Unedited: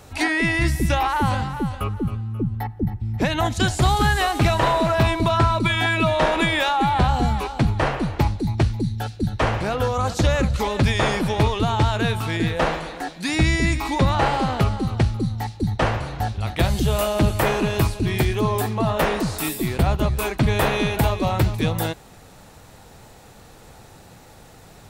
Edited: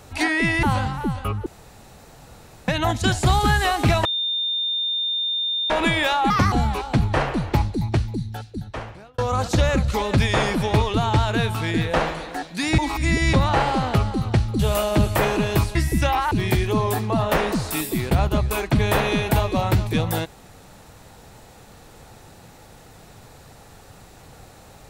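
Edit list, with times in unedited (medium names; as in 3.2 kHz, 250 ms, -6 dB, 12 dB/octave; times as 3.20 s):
0.63–1.19 s: move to 17.99 s
2.02–3.24 s: room tone
4.61–6.26 s: bleep 3.62 kHz -21 dBFS
6.86–7.18 s: speed 144%
8.34–9.84 s: fade out
13.44–13.99 s: reverse
15.25–16.83 s: delete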